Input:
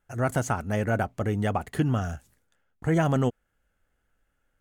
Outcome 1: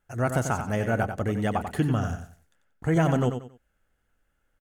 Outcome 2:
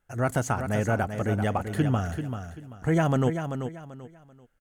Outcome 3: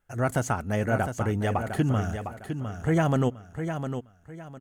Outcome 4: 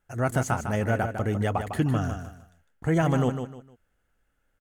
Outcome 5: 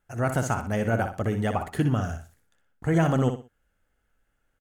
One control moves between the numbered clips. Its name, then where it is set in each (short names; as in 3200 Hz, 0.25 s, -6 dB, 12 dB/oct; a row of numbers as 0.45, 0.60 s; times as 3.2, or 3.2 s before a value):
feedback echo, time: 92, 388, 706, 153, 61 ms